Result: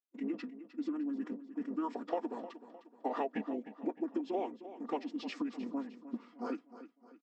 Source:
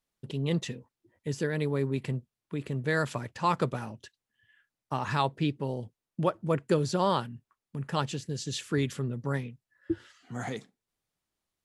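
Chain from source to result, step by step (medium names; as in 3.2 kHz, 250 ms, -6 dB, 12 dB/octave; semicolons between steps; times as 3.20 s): octave divider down 2 oct, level +3 dB; gate with hold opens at -49 dBFS; steep high-pass 260 Hz 48 dB/octave; treble shelf 3.5 kHz -11.5 dB; time stretch by phase-locked vocoder 0.62×; comb 4.2 ms, depth 41%; compression 10:1, threshold -34 dBFS, peak gain reduction 13 dB; formant shift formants -6 st; peaking EQ 570 Hz +4 dB 2 oct; feedback delay 307 ms, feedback 43%, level -13.5 dB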